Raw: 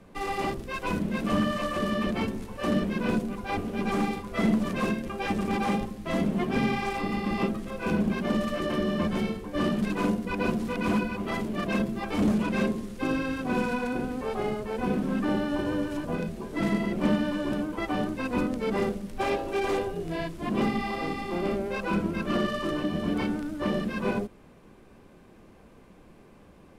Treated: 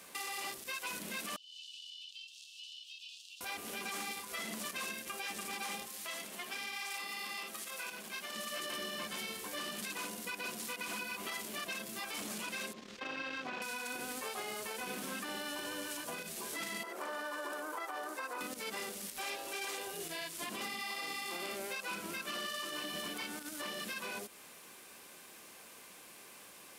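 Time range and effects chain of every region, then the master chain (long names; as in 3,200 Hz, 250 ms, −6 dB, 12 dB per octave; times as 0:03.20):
0:01.36–0:03.41: Chebyshev high-pass filter 2,700 Hz, order 8 + downward compressor 8 to 1, threshold −53 dBFS + high-frequency loss of the air 160 metres
0:05.87–0:08.36: high-pass filter 42 Hz + low-shelf EQ 360 Hz −10 dB + downward compressor, threshold −40 dBFS
0:12.73–0:13.62: high-frequency loss of the air 190 metres + saturating transformer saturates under 370 Hz
0:16.83–0:18.41: high-pass filter 350 Hz 24 dB per octave + high shelf with overshoot 1,900 Hz −10 dB, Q 1.5 + downward compressor, threshold −32 dBFS
whole clip: first difference; downward compressor, threshold −54 dBFS; brickwall limiter −48 dBFS; level +17.5 dB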